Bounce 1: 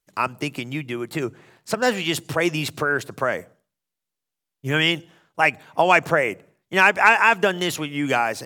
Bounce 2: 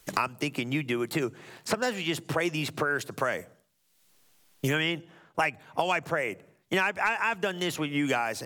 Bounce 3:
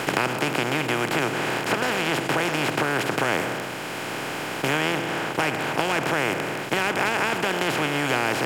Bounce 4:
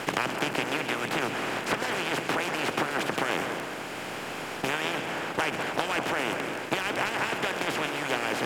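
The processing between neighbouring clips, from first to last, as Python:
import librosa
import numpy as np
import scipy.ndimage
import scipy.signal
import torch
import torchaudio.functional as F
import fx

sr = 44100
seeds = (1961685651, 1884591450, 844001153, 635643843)

y1 = fx.band_squash(x, sr, depth_pct=100)
y1 = F.gain(torch.from_numpy(y1), -8.0).numpy()
y2 = fx.bin_compress(y1, sr, power=0.2)
y2 = F.gain(torch.from_numpy(y2), -4.5).numpy()
y3 = fx.hpss(y2, sr, part='harmonic', gain_db=-13)
y3 = fx.echo_split(y3, sr, split_hz=2100.0, low_ms=206, high_ms=134, feedback_pct=52, wet_db=-8.5)
y3 = fx.doppler_dist(y3, sr, depth_ms=0.27)
y3 = F.gain(torch.from_numpy(y3), -1.5).numpy()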